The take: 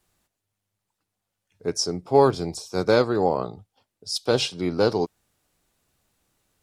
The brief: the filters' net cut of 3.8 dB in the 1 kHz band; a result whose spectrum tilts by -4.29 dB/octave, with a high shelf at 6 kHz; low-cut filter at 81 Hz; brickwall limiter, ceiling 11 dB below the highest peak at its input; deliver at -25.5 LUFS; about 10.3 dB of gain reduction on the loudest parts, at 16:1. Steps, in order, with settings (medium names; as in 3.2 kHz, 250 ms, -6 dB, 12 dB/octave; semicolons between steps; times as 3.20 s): high-pass 81 Hz; peaking EQ 1 kHz -5 dB; treble shelf 6 kHz -3.5 dB; compression 16:1, threshold -22 dBFS; trim +9 dB; peak limiter -14 dBFS